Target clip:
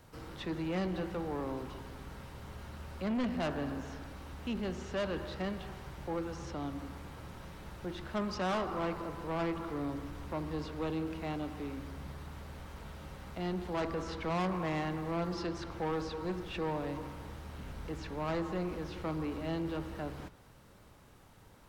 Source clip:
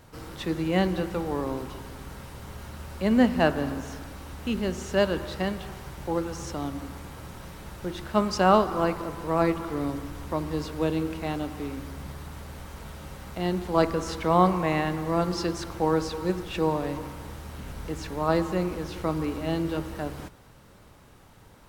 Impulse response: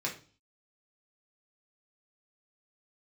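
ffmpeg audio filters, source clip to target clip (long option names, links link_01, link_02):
-filter_complex "[0:a]acrossover=split=340|5100[link_01][link_02][link_03];[link_03]acompressor=threshold=-60dB:ratio=5[link_04];[link_01][link_02][link_04]amix=inputs=3:normalize=0,asoftclip=type=tanh:threshold=-24dB,volume=-5.5dB"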